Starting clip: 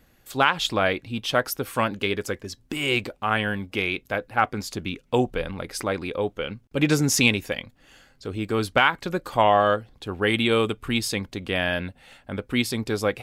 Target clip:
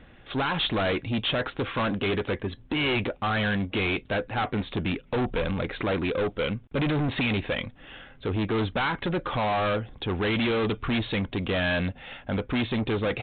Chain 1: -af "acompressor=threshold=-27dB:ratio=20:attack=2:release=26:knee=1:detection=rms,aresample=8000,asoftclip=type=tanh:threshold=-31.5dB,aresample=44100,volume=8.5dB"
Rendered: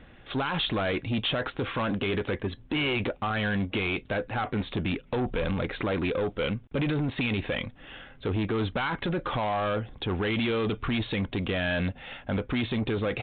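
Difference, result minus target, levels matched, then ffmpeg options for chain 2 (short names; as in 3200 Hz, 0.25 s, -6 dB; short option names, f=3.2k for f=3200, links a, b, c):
compressor: peak gain reduction +7.5 dB
-af "acompressor=threshold=-19dB:ratio=20:attack=2:release=26:knee=1:detection=rms,aresample=8000,asoftclip=type=tanh:threshold=-31.5dB,aresample=44100,volume=8.5dB"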